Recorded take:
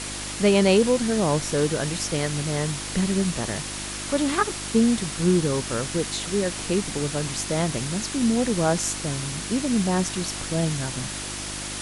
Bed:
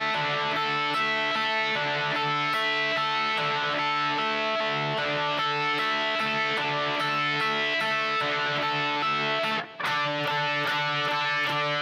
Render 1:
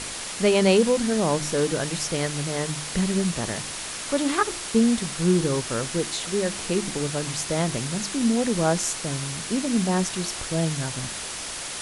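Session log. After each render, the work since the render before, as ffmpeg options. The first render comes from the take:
-af "bandreject=f=50:t=h:w=4,bandreject=f=100:t=h:w=4,bandreject=f=150:t=h:w=4,bandreject=f=200:t=h:w=4,bandreject=f=250:t=h:w=4,bandreject=f=300:t=h:w=4,bandreject=f=350:t=h:w=4"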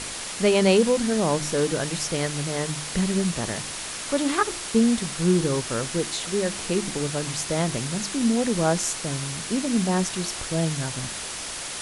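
-af anull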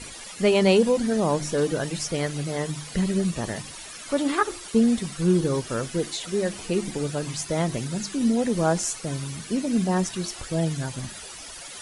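-af "afftdn=nr=13:nf=-34"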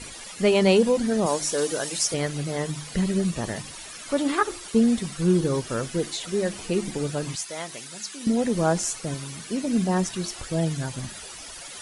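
-filter_complex "[0:a]asettb=1/sr,asplit=3[s0][s1][s2];[s0]atrim=end=1.264[s3];[s1]atrim=start=1.26:end=2.14,asetpts=PTS-STARTPTS,afade=t=in:d=0.004:c=qsin,afade=t=out:st=0.876:d=0.004:c=qsin,bass=f=250:g=-13,treble=f=4000:g=8[s4];[s2]atrim=start=2.136[s5];[s3][s4]acrossfade=d=0.004:c1=hsin:c2=qsin[s6];[s6][s5]acrossfade=d=0.004:c1=qsin:c2=hsin,asettb=1/sr,asplit=3[s7][s8][s9];[s7]atrim=end=7.354[s10];[s8]atrim=start=7.35:end=8.27,asetpts=PTS-STARTPTS,afade=t=in:d=0.004:c=qsin,afade=t=out:st=0.916:d=0.004:c=qsin,highpass=f=1500:p=1[s11];[s9]atrim=start=8.266[s12];[s10][s11]acrossfade=d=0.004:c1=hsin:c2=qsin[s13];[s13][s12]acrossfade=d=0.004:c1=qsin:c2=hsin,asettb=1/sr,asplit=3[s14][s15][s16];[s14]atrim=end=9.144[s17];[s15]atrim=start=9.14:end=9.64,asetpts=PTS-STARTPTS,afade=t=in:d=0.004:c=qsin,afade=t=out:st=0.496:d=0.004:c=qsin,lowshelf=f=160:g=-8.5[s18];[s16]atrim=start=9.636[s19];[s17][s18]acrossfade=d=0.004:c1=hsin:c2=qsin[s20];[s20][s19]acrossfade=d=0.004:c1=qsin:c2=hsin"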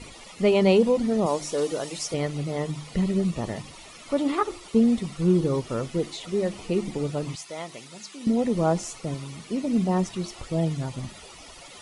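-af "lowpass=f=2700:p=1,equalizer=f=1600:t=o:w=0.2:g=-14"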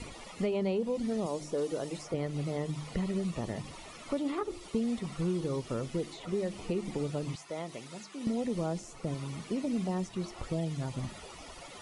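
-filter_complex "[0:a]acrossover=split=560|1900[s0][s1][s2];[s0]acompressor=threshold=0.0251:ratio=4[s3];[s1]acompressor=threshold=0.00708:ratio=4[s4];[s2]acompressor=threshold=0.00282:ratio=4[s5];[s3][s4][s5]amix=inputs=3:normalize=0"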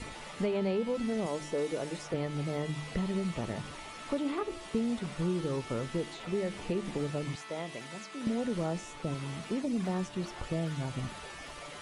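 -filter_complex "[1:a]volume=0.0794[s0];[0:a][s0]amix=inputs=2:normalize=0"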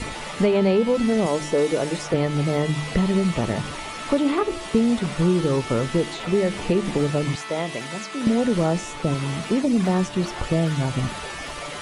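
-af "volume=3.98"

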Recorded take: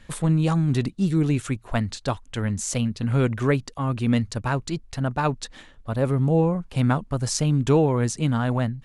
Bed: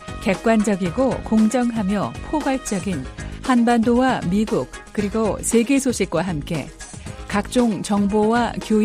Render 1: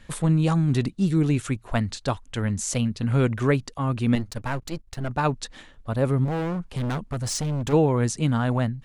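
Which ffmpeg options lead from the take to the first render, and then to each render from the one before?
-filter_complex "[0:a]asettb=1/sr,asplit=3[s0][s1][s2];[s0]atrim=end=4.154[s3];[s1]atrim=start=4.15:end=5.1,asetpts=PTS-STARTPTS,afade=t=in:d=0.004:c=qsin,afade=t=out:st=0.946:d=0.004:c=qsin,aeval=exprs='if(lt(val(0),0),0.251*val(0),val(0))':c=same[s4];[s2]atrim=start=5.096[s5];[s3][s4]acrossfade=d=0.004:c1=hsin:c2=qsin[s6];[s6][s5]acrossfade=d=0.004:c1=qsin:c2=hsin,asplit=3[s7][s8][s9];[s7]afade=t=out:st=6.24:d=0.02[s10];[s8]asoftclip=type=hard:threshold=0.0631,afade=t=in:st=6.24:d=0.02,afade=t=out:st=7.72:d=0.02[s11];[s9]afade=t=in:st=7.72:d=0.02[s12];[s10][s11][s12]amix=inputs=3:normalize=0"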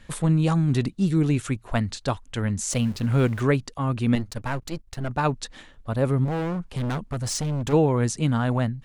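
-filter_complex "[0:a]asettb=1/sr,asplit=3[s0][s1][s2];[s0]atrim=end=2.704[s3];[s1]atrim=start=2.7:end=3.42,asetpts=PTS-STARTPTS,afade=t=in:d=0.004:c=qsin,afade=t=out:st=0.716:d=0.004:c=qsin,aeval=exprs='val(0)+0.5*0.0126*sgn(val(0))':c=same[s4];[s2]atrim=start=3.416[s5];[s3][s4]acrossfade=d=0.004:c1=hsin:c2=qsin[s6];[s6][s5]acrossfade=d=0.004:c1=qsin:c2=hsin"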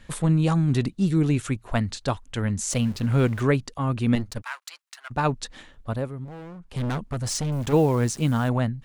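-filter_complex "[0:a]asplit=3[s0][s1][s2];[s0]afade=t=out:st=4.41:d=0.02[s3];[s1]highpass=f=1100:w=0.5412,highpass=f=1100:w=1.3066,afade=t=in:st=4.41:d=0.02,afade=t=out:st=5.1:d=0.02[s4];[s2]afade=t=in:st=5.1:d=0.02[s5];[s3][s4][s5]amix=inputs=3:normalize=0,asettb=1/sr,asplit=3[s6][s7][s8];[s6]atrim=end=7.524[s9];[s7]atrim=start=7.52:end=8.49,asetpts=PTS-STARTPTS,afade=t=in:d=0.004:c=qsin,afade=t=out:st=0.966:d=0.004:c=qsin,acrusher=bits=8:dc=4:mix=0:aa=0.000001[s10];[s8]atrim=start=8.486[s11];[s9][s10]acrossfade=d=0.004:c1=hsin:c2=qsin[s12];[s12][s11]acrossfade=d=0.004:c1=qsin:c2=hsin,asplit=3[s13][s14][s15];[s13]atrim=end=6.09,asetpts=PTS-STARTPTS,afade=t=out:st=5.9:d=0.19:silence=0.223872[s16];[s14]atrim=start=6.09:end=6.6,asetpts=PTS-STARTPTS,volume=0.224[s17];[s15]atrim=start=6.6,asetpts=PTS-STARTPTS,afade=t=in:d=0.19:silence=0.223872[s18];[s16][s17][s18]concat=n=3:v=0:a=1"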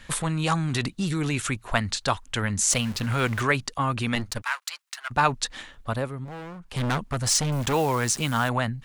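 -filter_complex "[0:a]acrossover=split=790[s0][s1];[s0]alimiter=limit=0.0891:level=0:latency=1[s2];[s1]acontrast=81[s3];[s2][s3]amix=inputs=2:normalize=0"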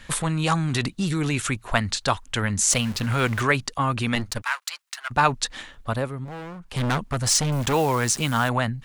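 -af "volume=1.26"

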